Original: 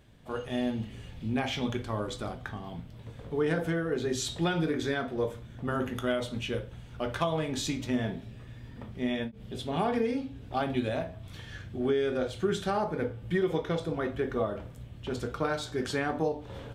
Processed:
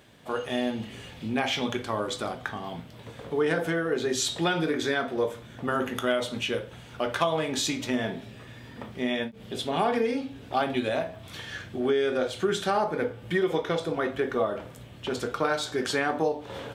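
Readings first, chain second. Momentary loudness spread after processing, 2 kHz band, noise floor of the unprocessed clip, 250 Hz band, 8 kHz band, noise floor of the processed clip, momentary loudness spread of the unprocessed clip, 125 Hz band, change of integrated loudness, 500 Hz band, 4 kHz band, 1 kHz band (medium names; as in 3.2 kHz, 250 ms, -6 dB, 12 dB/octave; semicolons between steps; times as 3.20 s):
12 LU, +6.0 dB, -47 dBFS, +1.0 dB, +6.5 dB, -46 dBFS, 12 LU, -2.5 dB, +3.5 dB, +3.5 dB, +6.5 dB, +5.0 dB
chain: high-pass 380 Hz 6 dB/octave; in parallel at -2.5 dB: compression, threshold -39 dBFS, peak gain reduction 13.5 dB; on the sum: crackle 83 per s -61 dBFS; trim +4 dB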